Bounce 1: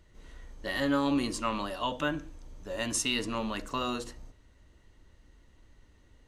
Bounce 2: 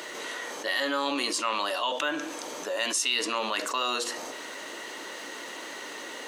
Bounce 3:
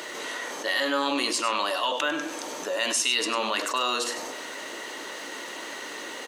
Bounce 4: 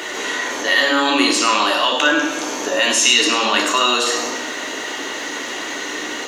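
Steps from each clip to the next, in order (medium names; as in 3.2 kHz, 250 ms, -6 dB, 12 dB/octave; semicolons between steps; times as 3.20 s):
Bessel high-pass 520 Hz, order 4; dynamic bell 4.1 kHz, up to +4 dB, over -45 dBFS, Q 0.71; level flattener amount 70%
delay 99 ms -11 dB; trim +2 dB
reverberation RT60 1.0 s, pre-delay 3 ms, DRR 2 dB; trim +4 dB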